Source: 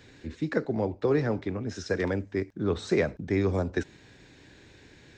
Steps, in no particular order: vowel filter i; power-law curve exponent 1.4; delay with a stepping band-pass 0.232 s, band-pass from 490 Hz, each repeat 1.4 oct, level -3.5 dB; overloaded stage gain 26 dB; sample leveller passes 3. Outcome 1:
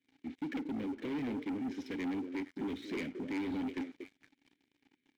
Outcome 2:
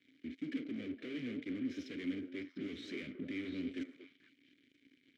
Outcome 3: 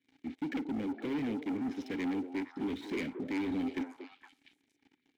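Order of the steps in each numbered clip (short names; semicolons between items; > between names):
overloaded stage > delay with a stepping band-pass > power-law curve > vowel filter > sample leveller; sample leveller > overloaded stage > delay with a stepping band-pass > power-law curve > vowel filter; overloaded stage > power-law curve > vowel filter > sample leveller > delay with a stepping band-pass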